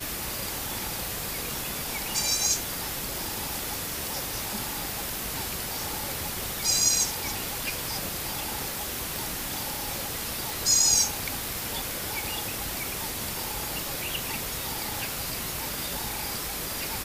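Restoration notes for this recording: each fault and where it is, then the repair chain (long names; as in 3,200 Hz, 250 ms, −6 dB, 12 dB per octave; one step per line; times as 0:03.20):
0:09.16: click
0:10.50: click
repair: click removal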